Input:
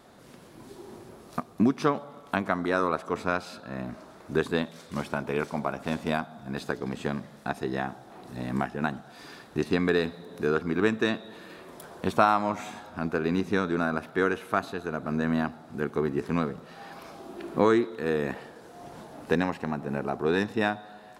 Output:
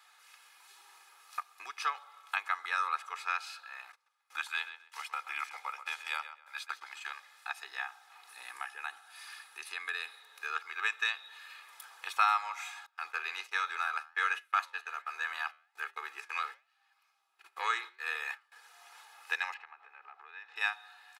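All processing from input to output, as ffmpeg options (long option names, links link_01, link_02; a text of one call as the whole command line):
ffmpeg -i in.wav -filter_complex "[0:a]asettb=1/sr,asplit=3[link_01][link_02][link_03];[link_01]atrim=end=3.924[link_04];[link_02]atrim=start=3.92:end=7.11,asetpts=PTS-STARTPTS,afade=type=in:duration=0.004:curve=qsin,afade=type=out:start_time=3.186:duration=0.004:curve=qsin,agate=range=-23dB:threshold=-42dB:ratio=16:release=100:detection=peak,afreqshift=-120,asplit=2[link_05][link_06];[link_06]adelay=131,lowpass=frequency=3600:poles=1,volume=-11dB,asplit=2[link_07][link_08];[link_08]adelay=131,lowpass=frequency=3600:poles=1,volume=0.25,asplit=2[link_09][link_10];[link_10]adelay=131,lowpass=frequency=3600:poles=1,volume=0.25[link_11];[link_05][link_07][link_09][link_11]amix=inputs=4:normalize=0,atrim=end_sample=140679[link_12];[link_03]atrim=start=7.106[link_13];[link_04][link_12]acrossfade=duration=0.004:curve1=hsin:curve2=qsin[link_14];[link_14][link_13]acrossfade=duration=0.004:curve1=qsin:curve2=hsin,asettb=1/sr,asplit=3[link_15][link_16][link_17];[link_15]atrim=end=8.294[link_18];[link_16]atrim=start=8.29:end=10.2,asetpts=PTS-STARTPTS,afade=type=in:duration=0.004:curve=qsin,afade=type=out:start_time=1.906:duration=0.004:curve=qsin,highpass=frequency=230:width_type=q:width=2.8,equalizer=frequency=10000:width=3.7:gain=12,acompressor=threshold=-24dB:ratio=2:attack=3.2:release=140:knee=1:detection=peak[link_19];[link_17]atrim=start=10.196[link_20];[link_18][link_19]acrossfade=duration=0.004:curve1=hsin:curve2=qsin[link_21];[link_21][link_20]acrossfade=duration=0.004:curve1=qsin:curve2=hsin,asettb=1/sr,asplit=3[link_22][link_23][link_24];[link_22]atrim=end=12.864[link_25];[link_23]atrim=start=12.86:end=18.52,asetpts=PTS-STARTPTS,afade=type=in:duration=0.004:curve=qsin,afade=type=out:start_time=5.656:duration=0.004:curve=qsin,agate=range=-25dB:threshold=-37dB:ratio=16:release=100:detection=peak,acontrast=70,flanger=delay=6.2:depth=6.9:regen=-83:speed=1.3:shape=sinusoidal[link_26];[link_24]atrim=start=18.516[link_27];[link_25][link_26]acrossfade=duration=0.004:curve1=hsin:curve2=qsin[link_28];[link_28][link_27]acrossfade=duration=0.004:curve1=qsin:curve2=hsin,asettb=1/sr,asplit=3[link_29][link_30][link_31];[link_29]atrim=end=19.544[link_32];[link_30]atrim=start=19.54:end=20.56,asetpts=PTS-STARTPTS,afade=type=in:duration=0.004:curve=qsin,afade=type=out:start_time=1.016:duration=0.004:curve=qsin,lowpass=2600,acompressor=threshold=-36dB:ratio=6:attack=3.2:release=140:knee=1:detection=peak[link_33];[link_31]atrim=start=20.556[link_34];[link_32][link_33]acrossfade=duration=0.004:curve1=hsin:curve2=qsin[link_35];[link_35][link_34]acrossfade=duration=0.004:curve1=qsin:curve2=hsin,highpass=frequency=1100:width=0.5412,highpass=frequency=1100:width=1.3066,equalizer=frequency=2500:width_type=o:width=0.27:gain=5.5,aecho=1:1:2.4:0.67,volume=-3dB" out.wav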